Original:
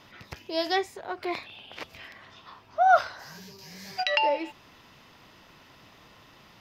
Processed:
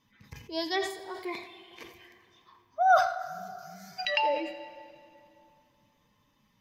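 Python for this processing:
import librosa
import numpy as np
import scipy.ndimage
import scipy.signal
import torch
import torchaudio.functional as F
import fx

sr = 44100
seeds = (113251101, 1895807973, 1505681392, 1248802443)

y = fx.bin_expand(x, sr, power=1.5)
y = fx.high_shelf(y, sr, hz=6300.0, db=8.0, at=(0.9, 3.06))
y = y + 10.0 ** (-15.5 / 20.0) * np.pad(y, (int(85 * sr / 1000.0), 0))[:len(y)]
y = fx.rev_plate(y, sr, seeds[0], rt60_s=2.6, hf_ratio=0.75, predelay_ms=0, drr_db=10.0)
y = fx.sustainer(y, sr, db_per_s=90.0)
y = F.gain(torch.from_numpy(y), -2.0).numpy()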